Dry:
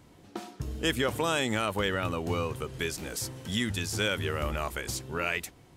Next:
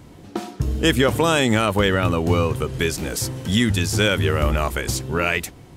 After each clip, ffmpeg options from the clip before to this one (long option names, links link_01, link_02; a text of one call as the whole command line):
ffmpeg -i in.wav -af "lowshelf=frequency=420:gain=5,volume=8.5dB" out.wav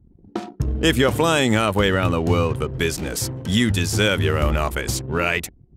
ffmpeg -i in.wav -af "anlmdn=6.31" out.wav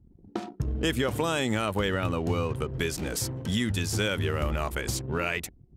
ffmpeg -i in.wav -af "acompressor=threshold=-23dB:ratio=2,volume=-4dB" out.wav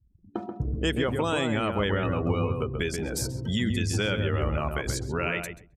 ffmpeg -i in.wav -filter_complex "[0:a]afftdn=noise_reduction=21:noise_floor=-40,asplit=2[link_01][link_02];[link_02]adelay=133,lowpass=frequency=1300:poles=1,volume=-4dB,asplit=2[link_03][link_04];[link_04]adelay=133,lowpass=frequency=1300:poles=1,volume=0.16,asplit=2[link_05][link_06];[link_06]adelay=133,lowpass=frequency=1300:poles=1,volume=0.16[link_07];[link_03][link_05][link_07]amix=inputs=3:normalize=0[link_08];[link_01][link_08]amix=inputs=2:normalize=0" out.wav